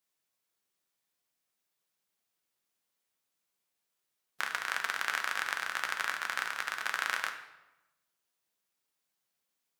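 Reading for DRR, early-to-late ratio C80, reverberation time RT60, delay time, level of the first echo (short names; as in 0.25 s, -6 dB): 4.0 dB, 11.0 dB, 1.0 s, none, none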